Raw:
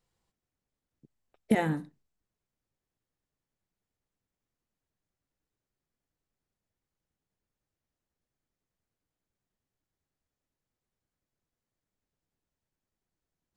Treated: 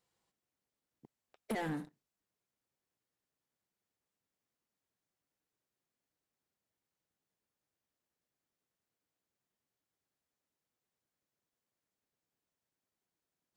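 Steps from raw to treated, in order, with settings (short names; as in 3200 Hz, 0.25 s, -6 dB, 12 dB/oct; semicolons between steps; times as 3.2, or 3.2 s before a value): HPF 260 Hz 6 dB/oct; sample leveller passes 2; compressor 10:1, threshold -35 dBFS, peak gain reduction 16 dB; soft clip -35 dBFS, distortion -13 dB; gain +3.5 dB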